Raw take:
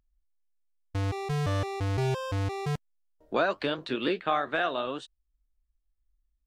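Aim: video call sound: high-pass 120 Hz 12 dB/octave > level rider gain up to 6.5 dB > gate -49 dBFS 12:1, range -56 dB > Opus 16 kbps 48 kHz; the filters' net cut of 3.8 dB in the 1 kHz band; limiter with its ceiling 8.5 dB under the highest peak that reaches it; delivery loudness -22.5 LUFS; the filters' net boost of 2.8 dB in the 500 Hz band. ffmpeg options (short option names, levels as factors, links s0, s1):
-af "equalizer=f=500:t=o:g=6,equalizer=f=1000:t=o:g=-8.5,alimiter=limit=0.0891:level=0:latency=1,highpass=120,dynaudnorm=m=2.11,agate=range=0.00158:threshold=0.00355:ratio=12,volume=3.16" -ar 48000 -c:a libopus -b:a 16k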